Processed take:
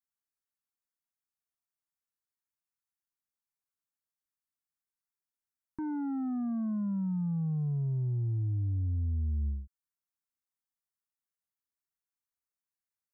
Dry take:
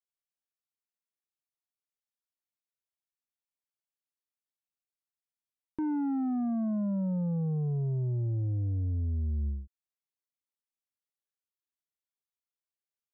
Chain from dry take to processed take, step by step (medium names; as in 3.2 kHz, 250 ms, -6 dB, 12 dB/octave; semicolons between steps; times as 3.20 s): static phaser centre 1.3 kHz, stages 4